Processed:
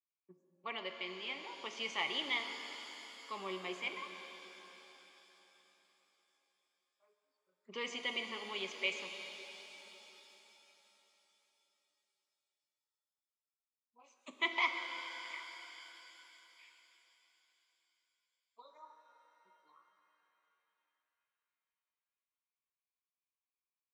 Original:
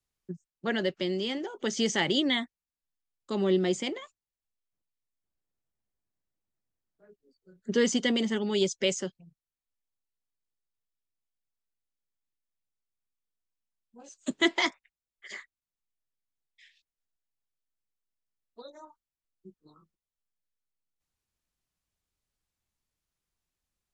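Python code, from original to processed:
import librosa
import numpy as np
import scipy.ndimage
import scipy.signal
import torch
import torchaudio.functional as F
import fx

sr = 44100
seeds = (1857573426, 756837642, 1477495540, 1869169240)

y = fx.noise_reduce_blind(x, sr, reduce_db=9)
y = fx.double_bandpass(y, sr, hz=1600.0, octaves=1.1)
y = fx.rev_shimmer(y, sr, seeds[0], rt60_s=3.8, semitones=7, shimmer_db=-8, drr_db=5.0)
y = F.gain(torch.from_numpy(y), 3.0).numpy()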